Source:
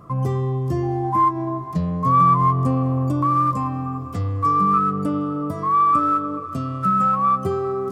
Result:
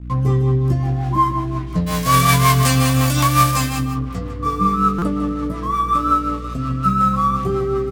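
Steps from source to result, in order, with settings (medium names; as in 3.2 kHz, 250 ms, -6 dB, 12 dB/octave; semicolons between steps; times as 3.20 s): 1.86–3.78 s: formants flattened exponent 0.3; hum notches 50/100/150/200/250/300/350 Hz; crossover distortion -41 dBFS; mains buzz 60 Hz, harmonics 5, -36 dBFS -6 dB/octave; rotary cabinet horn 5.5 Hz; doubling 16 ms -5 dB; delay 153 ms -10 dB; buffer glitch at 4.98 s, samples 256, times 6; trim +3.5 dB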